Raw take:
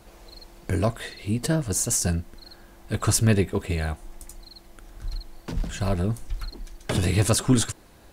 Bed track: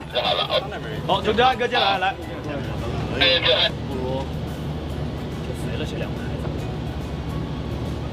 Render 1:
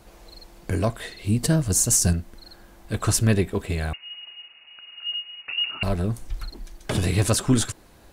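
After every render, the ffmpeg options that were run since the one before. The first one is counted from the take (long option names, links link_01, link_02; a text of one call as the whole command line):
ffmpeg -i in.wav -filter_complex "[0:a]asettb=1/sr,asplit=3[link_01][link_02][link_03];[link_01]atrim=end=1.244[link_04];[link_02]atrim=start=1.24:end=2.13,asetpts=PTS-STARTPTS,afade=type=in:duration=0.004:curve=qsin,afade=type=out:start_time=0.886:duration=0.004:curve=qsin,bass=frequency=250:gain=5,treble=frequency=4000:gain=5[link_05];[link_03]atrim=start=2.126[link_06];[link_04][link_05]acrossfade=duration=0.004:curve1=hsin:curve2=qsin[link_07];[link_07][link_06]acrossfade=duration=0.004:curve1=qsin:curve2=hsin,asettb=1/sr,asplit=3[link_08][link_09][link_10];[link_08]atrim=end=3.934[link_11];[link_09]atrim=start=3.93:end=5.83,asetpts=PTS-STARTPTS,afade=type=in:duration=0.004:curve=qsin,afade=type=out:start_time=1.896:duration=0.004:curve=qsin,lowpass=frequency=2500:width_type=q:width=0.5098,lowpass=frequency=2500:width_type=q:width=0.6013,lowpass=frequency=2500:width_type=q:width=0.9,lowpass=frequency=2500:width_type=q:width=2.563,afreqshift=-2900[link_12];[link_10]atrim=start=5.826[link_13];[link_11][link_12]acrossfade=duration=0.004:curve1=hsin:curve2=qsin[link_14];[link_14][link_13]acrossfade=duration=0.004:curve1=qsin:curve2=hsin" out.wav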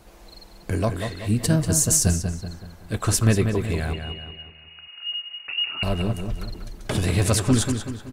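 ffmpeg -i in.wav -filter_complex "[0:a]asplit=2[link_01][link_02];[link_02]adelay=189,lowpass=frequency=3900:poles=1,volume=-6.5dB,asplit=2[link_03][link_04];[link_04]adelay=189,lowpass=frequency=3900:poles=1,volume=0.46,asplit=2[link_05][link_06];[link_06]adelay=189,lowpass=frequency=3900:poles=1,volume=0.46,asplit=2[link_07][link_08];[link_08]adelay=189,lowpass=frequency=3900:poles=1,volume=0.46,asplit=2[link_09][link_10];[link_10]adelay=189,lowpass=frequency=3900:poles=1,volume=0.46[link_11];[link_01][link_03][link_05][link_07][link_09][link_11]amix=inputs=6:normalize=0" out.wav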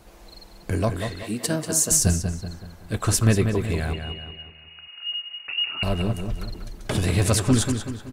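ffmpeg -i in.wav -filter_complex "[0:a]asettb=1/sr,asplit=3[link_01][link_02][link_03];[link_01]atrim=end=1.234[link_04];[link_02]atrim=start=1.23:end=1.91,asetpts=PTS-STARTPTS,afade=type=in:duration=0.004:curve=qsin,afade=type=out:start_time=0.676:duration=0.004:curve=qsin,highpass=270[link_05];[link_03]atrim=start=1.906[link_06];[link_04][link_05]acrossfade=duration=0.004:curve1=hsin:curve2=qsin[link_07];[link_07][link_06]acrossfade=duration=0.004:curve1=qsin:curve2=hsin" out.wav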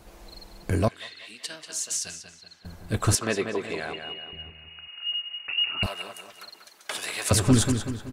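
ffmpeg -i in.wav -filter_complex "[0:a]asettb=1/sr,asplit=3[link_01][link_02][link_03];[link_01]atrim=end=0.884[link_04];[link_02]atrim=start=0.88:end=2.65,asetpts=PTS-STARTPTS,afade=type=in:duration=0.004:curve=qsin,afade=type=out:start_time=1.766:duration=0.004:curve=qsin,bandpass=frequency=3200:width_type=q:width=1.4[link_05];[link_03]atrim=start=2.646[link_06];[link_04][link_05]acrossfade=duration=0.004:curve1=hsin:curve2=qsin[link_07];[link_07][link_06]acrossfade=duration=0.004:curve1=qsin:curve2=hsin,asettb=1/sr,asplit=3[link_08][link_09][link_10];[link_08]atrim=end=3.154[link_11];[link_09]atrim=start=3.15:end=4.33,asetpts=PTS-STARTPTS,afade=type=in:duration=0.004:curve=qsin,afade=type=out:start_time=1.176:duration=0.004:curve=qsin,highpass=390,lowpass=6200[link_12];[link_10]atrim=start=4.326[link_13];[link_11][link_12]acrossfade=duration=0.004:curve1=hsin:curve2=qsin[link_14];[link_14][link_13]acrossfade=duration=0.004:curve1=qsin:curve2=hsin,asettb=1/sr,asplit=3[link_15][link_16][link_17];[link_15]atrim=end=5.864[link_18];[link_16]atrim=start=5.86:end=7.31,asetpts=PTS-STARTPTS,afade=type=in:duration=0.004:curve=qsin,afade=type=out:start_time=1.446:duration=0.004:curve=qsin,highpass=980[link_19];[link_17]atrim=start=7.306[link_20];[link_18][link_19]acrossfade=duration=0.004:curve1=hsin:curve2=qsin[link_21];[link_21][link_20]acrossfade=duration=0.004:curve1=qsin:curve2=hsin" out.wav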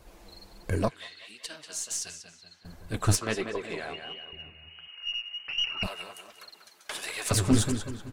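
ffmpeg -i in.wav -af "aeval=exprs='0.398*(cos(1*acos(clip(val(0)/0.398,-1,1)))-cos(1*PI/2))+0.1*(cos(2*acos(clip(val(0)/0.398,-1,1)))-cos(2*PI/2))':channel_layout=same,flanger=delay=1.8:depth=9.7:regen=37:speed=1.4:shape=sinusoidal" out.wav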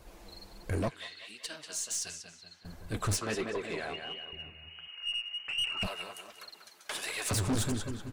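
ffmpeg -i in.wav -af "asoftclip=type=tanh:threshold=-26dB" out.wav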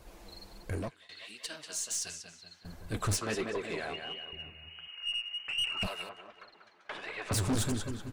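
ffmpeg -i in.wav -filter_complex "[0:a]asettb=1/sr,asplit=3[link_01][link_02][link_03];[link_01]atrim=end=6.094[link_04];[link_02]atrim=start=6.09:end=7.32,asetpts=PTS-STARTPTS,afade=type=in:duration=0.004:curve=qsin,afade=type=out:start_time=1.226:duration=0.004:curve=qsin,lowpass=2200[link_05];[link_03]atrim=start=7.316[link_06];[link_04][link_05]acrossfade=duration=0.004:curve1=hsin:curve2=qsin[link_07];[link_07][link_06]acrossfade=duration=0.004:curve1=qsin:curve2=hsin,asplit=2[link_08][link_09];[link_08]atrim=end=1.09,asetpts=PTS-STARTPTS,afade=type=out:start_time=0.57:duration=0.52:silence=0.0749894[link_10];[link_09]atrim=start=1.09,asetpts=PTS-STARTPTS,afade=type=in:duration=0.004:curve=hsin:silence=0.0749894[link_11];[link_10][link_11]concat=n=2:v=0:a=1" out.wav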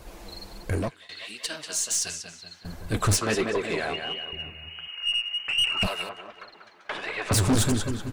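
ffmpeg -i in.wav -af "volume=8.5dB" out.wav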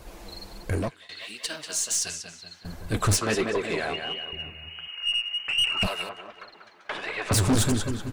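ffmpeg -i in.wav -filter_complex "[0:a]asettb=1/sr,asplit=3[link_01][link_02][link_03];[link_01]atrim=end=1.214[link_04];[link_02]atrim=start=1.21:end=1.9,asetpts=PTS-STARTPTS,afade=type=in:duration=0.004:curve=qsin,afade=type=out:start_time=0.686:duration=0.004:curve=qsin,acrusher=bits=7:mode=log:mix=0:aa=0.000001[link_05];[link_03]atrim=start=1.896[link_06];[link_04][link_05]acrossfade=duration=0.004:curve1=hsin:curve2=qsin[link_07];[link_07][link_06]acrossfade=duration=0.004:curve1=qsin:curve2=hsin" out.wav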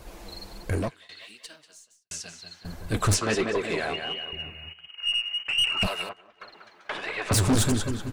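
ffmpeg -i in.wav -filter_complex "[0:a]asettb=1/sr,asplit=3[link_01][link_02][link_03];[link_01]atrim=end=3.144[link_04];[link_02]atrim=start=3.14:end=3.56,asetpts=PTS-STARTPTS,afade=type=in:duration=0.004:curve=qsin,afade=type=out:start_time=0.416:duration=0.004:curve=qsin,lowpass=8800[link_05];[link_03]atrim=start=3.556[link_06];[link_04][link_05]acrossfade=duration=0.004:curve1=hsin:curve2=qsin[link_07];[link_07][link_06]acrossfade=duration=0.004:curve1=qsin:curve2=hsin,asplit=3[link_08][link_09][link_10];[link_08]afade=type=out:start_time=4.72:duration=0.02[link_11];[link_09]agate=range=-12dB:threshold=-38dB:ratio=16:release=100:detection=peak,afade=type=in:start_time=4.72:duration=0.02,afade=type=out:start_time=6.4:duration=0.02[link_12];[link_10]afade=type=in:start_time=6.4:duration=0.02[link_13];[link_11][link_12][link_13]amix=inputs=3:normalize=0,asplit=2[link_14][link_15];[link_14]atrim=end=2.11,asetpts=PTS-STARTPTS,afade=type=out:start_time=0.85:duration=1.26:curve=qua[link_16];[link_15]atrim=start=2.11,asetpts=PTS-STARTPTS,afade=type=in:duration=0.004:curve=hsin[link_17];[link_16][link_17]concat=n=2:v=0:a=1" out.wav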